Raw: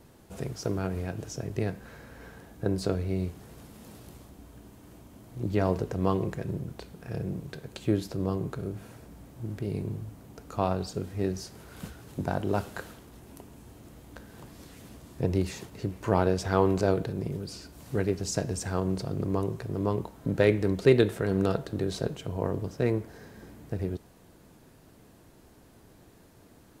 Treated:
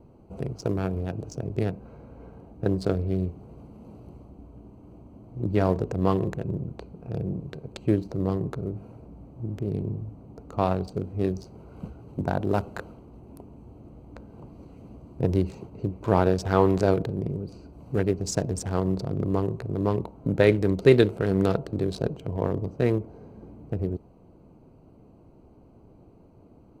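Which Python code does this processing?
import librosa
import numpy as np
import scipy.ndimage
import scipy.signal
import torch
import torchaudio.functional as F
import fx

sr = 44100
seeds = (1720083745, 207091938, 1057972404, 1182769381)

y = fx.wiener(x, sr, points=25)
y = y * librosa.db_to_amplitude(3.5)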